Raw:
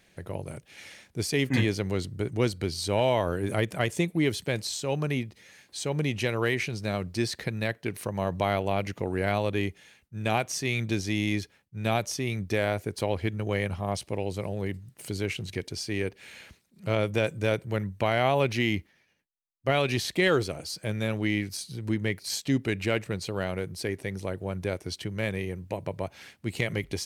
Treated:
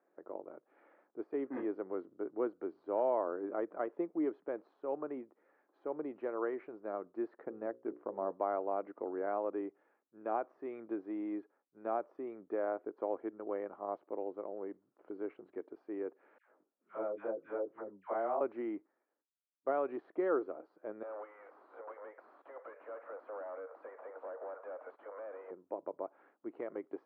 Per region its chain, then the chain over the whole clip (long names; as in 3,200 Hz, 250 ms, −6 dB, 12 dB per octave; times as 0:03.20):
0:07.45–0:08.32: mu-law and A-law mismatch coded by A + spectral tilt −2.5 dB per octave + mains-hum notches 60/120/180/240/300/360/420/480/540 Hz
0:16.38–0:18.41: chorus effect 2.2 Hz, delay 17 ms, depth 3.7 ms + all-pass dispersion lows, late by 104 ms, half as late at 980 Hz
0:21.03–0:25.51: Butterworth high-pass 480 Hz 96 dB per octave + downward compressor 4 to 1, threshold −47 dBFS + mid-hump overdrive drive 35 dB, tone 2,500 Hz, clips at −29 dBFS
whole clip: de-essing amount 70%; elliptic band-pass filter 300–1,300 Hz, stop band 80 dB; level −6.5 dB